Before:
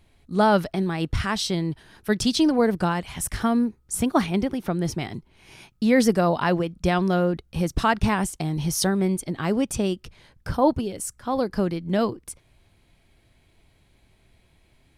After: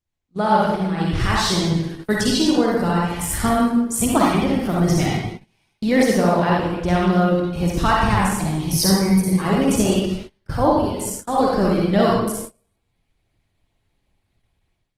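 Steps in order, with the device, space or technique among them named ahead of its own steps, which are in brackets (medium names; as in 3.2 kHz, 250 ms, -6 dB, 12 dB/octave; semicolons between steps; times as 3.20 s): 8.72–9.42 s: rippled EQ curve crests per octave 0.86, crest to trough 11 dB; speakerphone in a meeting room (reverberation RT60 0.90 s, pre-delay 43 ms, DRR -4 dB; level rider gain up to 15.5 dB; gate -26 dBFS, range -25 dB; trim -4 dB; Opus 16 kbps 48 kHz)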